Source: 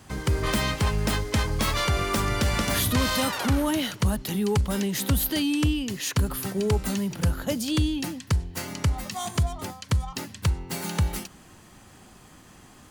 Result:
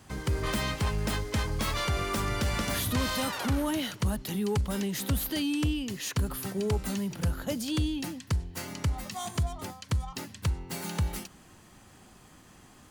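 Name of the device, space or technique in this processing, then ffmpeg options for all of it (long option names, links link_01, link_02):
saturation between pre-emphasis and de-emphasis: -af "highshelf=frequency=2900:gain=12,asoftclip=type=tanh:threshold=-12.5dB,highshelf=frequency=2900:gain=-12,volume=-4dB"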